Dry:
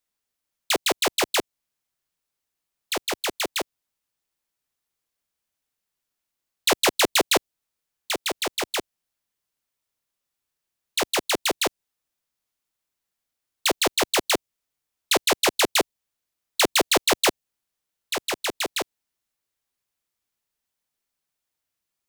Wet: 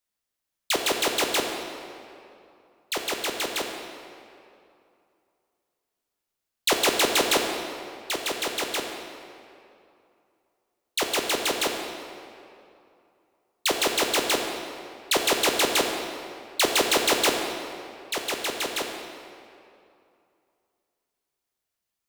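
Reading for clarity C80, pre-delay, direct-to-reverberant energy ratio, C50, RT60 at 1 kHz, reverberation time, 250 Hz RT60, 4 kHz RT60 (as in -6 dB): 5.0 dB, 7 ms, 2.5 dB, 4.0 dB, 2.6 s, 2.6 s, 2.6 s, 1.8 s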